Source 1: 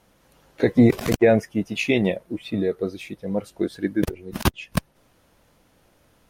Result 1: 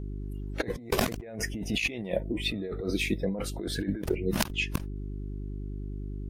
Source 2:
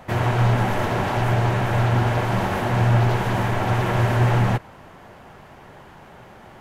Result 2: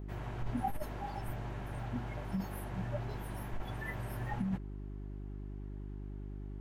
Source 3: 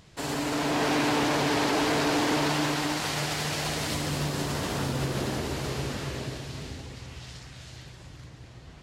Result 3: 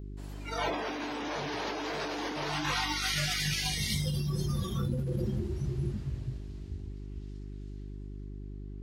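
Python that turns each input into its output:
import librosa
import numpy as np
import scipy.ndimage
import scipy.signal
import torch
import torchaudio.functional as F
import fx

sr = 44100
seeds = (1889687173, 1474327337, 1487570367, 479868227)

y = fx.noise_reduce_blind(x, sr, reduce_db=24)
y = fx.dmg_buzz(y, sr, base_hz=50.0, harmonics=8, level_db=-44.0, tilt_db=-6, odd_only=False)
y = fx.over_compress(y, sr, threshold_db=-32.0, ratio=-1.0)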